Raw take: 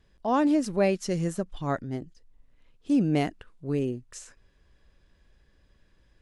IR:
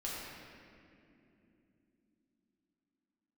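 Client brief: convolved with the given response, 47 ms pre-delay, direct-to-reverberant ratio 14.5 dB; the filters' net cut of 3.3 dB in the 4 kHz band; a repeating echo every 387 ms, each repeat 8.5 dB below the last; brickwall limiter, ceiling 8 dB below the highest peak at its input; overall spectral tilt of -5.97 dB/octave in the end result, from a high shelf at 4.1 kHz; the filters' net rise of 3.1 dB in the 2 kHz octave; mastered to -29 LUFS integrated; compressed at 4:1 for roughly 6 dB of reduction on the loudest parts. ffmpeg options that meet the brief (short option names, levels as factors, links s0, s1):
-filter_complex "[0:a]equalizer=f=2000:t=o:g=6,equalizer=f=4000:t=o:g=-5,highshelf=f=4100:g=-4,acompressor=threshold=0.0501:ratio=4,alimiter=level_in=1.26:limit=0.0631:level=0:latency=1,volume=0.794,aecho=1:1:387|774|1161|1548:0.376|0.143|0.0543|0.0206,asplit=2[s0][s1];[1:a]atrim=start_sample=2205,adelay=47[s2];[s1][s2]afir=irnorm=-1:irlink=0,volume=0.141[s3];[s0][s3]amix=inputs=2:normalize=0,volume=2.11"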